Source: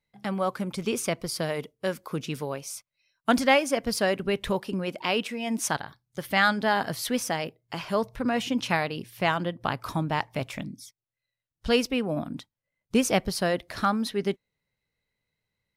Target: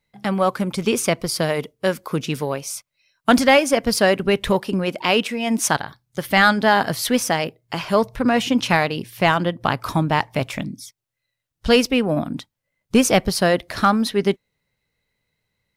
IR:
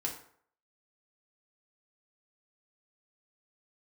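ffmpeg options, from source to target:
-af "apsyclip=14.5dB,aeval=exprs='1.12*(cos(1*acos(clip(val(0)/1.12,-1,1)))-cos(1*PI/2))+0.0158*(cos(7*acos(clip(val(0)/1.12,-1,1)))-cos(7*PI/2))':channel_layout=same,volume=-6dB"

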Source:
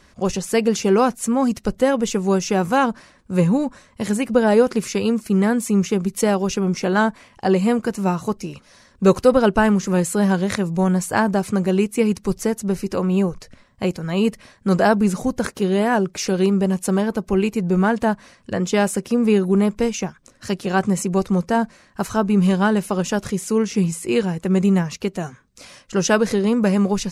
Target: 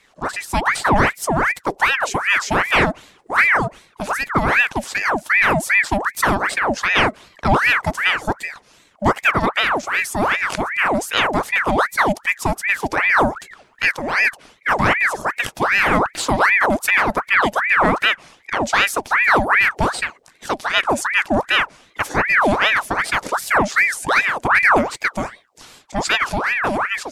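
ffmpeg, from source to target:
ffmpeg -i in.wav -af "dynaudnorm=framelen=110:gausssize=11:maxgain=11.5dB,aeval=exprs='val(0)*sin(2*PI*1300*n/s+1300*0.7/2.6*sin(2*PI*2.6*n/s))':channel_layout=same,volume=-1dB" out.wav

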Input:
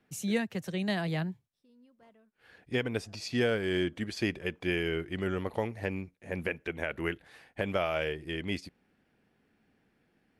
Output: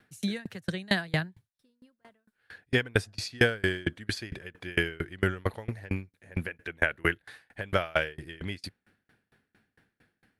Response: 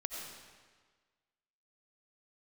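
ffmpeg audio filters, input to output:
-af "equalizer=frequency=100:width_type=o:width=0.67:gain=8,equalizer=frequency=1600:width_type=o:width=0.67:gain=9,equalizer=frequency=4000:width_type=o:width=0.67:gain=6,equalizer=frequency=10000:width_type=o:width=0.67:gain=8,aeval=exprs='val(0)*pow(10,-30*if(lt(mod(4.4*n/s,1),2*abs(4.4)/1000),1-mod(4.4*n/s,1)/(2*abs(4.4)/1000),(mod(4.4*n/s,1)-2*abs(4.4)/1000)/(1-2*abs(4.4)/1000))/20)':channel_layout=same,volume=7dB"

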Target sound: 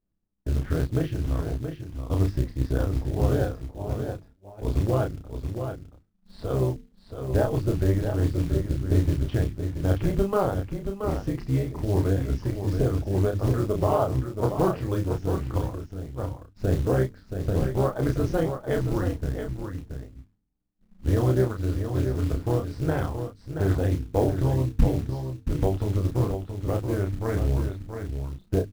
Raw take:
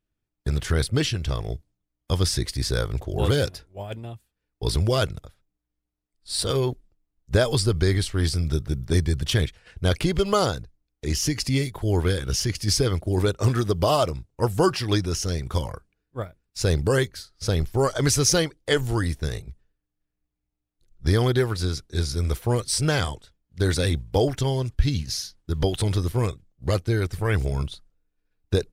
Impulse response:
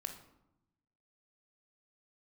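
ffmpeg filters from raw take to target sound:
-filter_complex "[0:a]lowpass=1100,lowshelf=frequency=62:gain=7,bandreject=frequency=50:width_type=h:width=6,bandreject=frequency=100:width_type=h:width=6,bandreject=frequency=150:width_type=h:width=6,bandreject=frequency=200:width_type=h:width=6,bandreject=frequency=250:width_type=h:width=6,acontrast=41,acrusher=bits=6:mode=log:mix=0:aa=0.000001,tremolo=f=200:d=0.71,asplit=2[link_01][link_02];[link_02]adelay=31,volume=-4.5dB[link_03];[link_01][link_03]amix=inputs=2:normalize=0,aecho=1:1:677:0.422,volume=-5.5dB"

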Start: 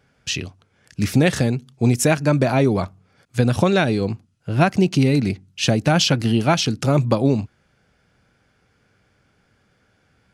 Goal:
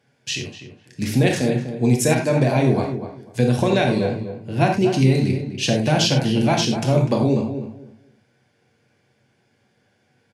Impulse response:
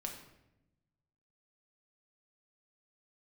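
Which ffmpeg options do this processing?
-filter_complex "[0:a]highpass=140,equalizer=frequency=1300:width_type=o:width=0.27:gain=-12,asplit=2[link_01][link_02];[link_02]adelay=248,lowpass=frequency=1800:poles=1,volume=-9dB,asplit=2[link_03][link_04];[link_04]adelay=248,lowpass=frequency=1800:poles=1,volume=0.21,asplit=2[link_05][link_06];[link_06]adelay=248,lowpass=frequency=1800:poles=1,volume=0.21[link_07];[link_01][link_03][link_05][link_07]amix=inputs=4:normalize=0[link_08];[1:a]atrim=start_sample=2205,atrim=end_sample=3087,asetrate=28224,aresample=44100[link_09];[link_08][link_09]afir=irnorm=-1:irlink=0,volume=-1dB"

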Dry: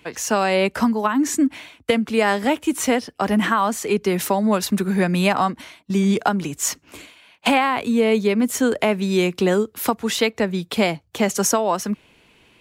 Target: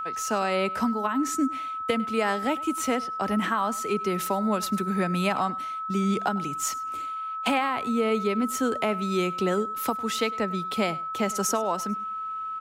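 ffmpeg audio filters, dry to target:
ffmpeg -i in.wav -af "aeval=exprs='val(0)+0.0794*sin(2*PI*1300*n/s)':channel_layout=same,aecho=1:1:102|204:0.0891|0.0152,volume=-7.5dB" out.wav

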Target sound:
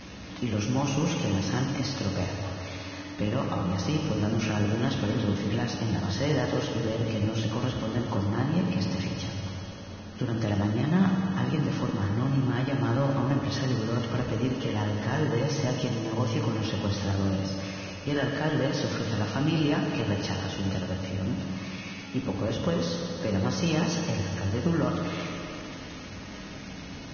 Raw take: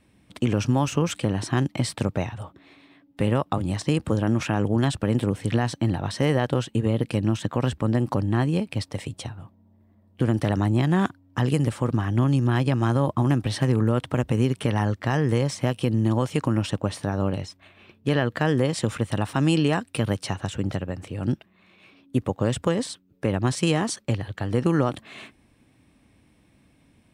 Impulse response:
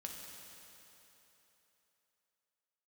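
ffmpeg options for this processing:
-filter_complex "[0:a]aeval=exprs='val(0)+0.5*0.0299*sgn(val(0))':channel_layout=same[link_01];[1:a]atrim=start_sample=2205[link_02];[link_01][link_02]afir=irnorm=-1:irlink=0,volume=-2.5dB" -ar 16000 -c:a libvorbis -b:a 16k

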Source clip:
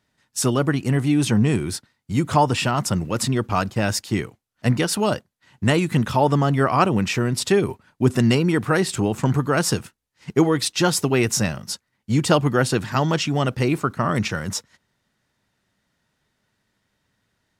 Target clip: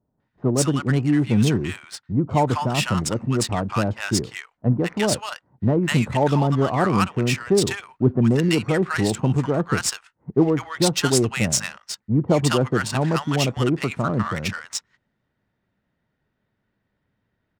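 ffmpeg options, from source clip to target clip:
ffmpeg -i in.wav -filter_complex "[0:a]acrossover=split=1000[link_01][link_02];[link_02]adelay=200[link_03];[link_01][link_03]amix=inputs=2:normalize=0,adynamicsmooth=sensitivity=3.5:basefreq=2100,adynamicequalizer=threshold=0.00562:dfrequency=8200:dqfactor=1.2:tfrequency=8200:tqfactor=1.2:attack=5:release=100:ratio=0.375:range=3.5:mode=boostabove:tftype=bell" out.wav

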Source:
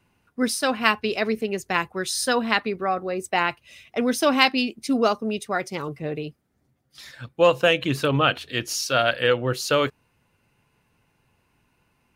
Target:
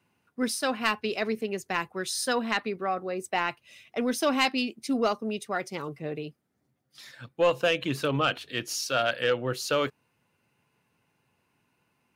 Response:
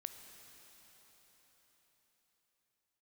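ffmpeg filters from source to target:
-af "highpass=120,asoftclip=type=tanh:threshold=-8.5dB,volume=-4.5dB"

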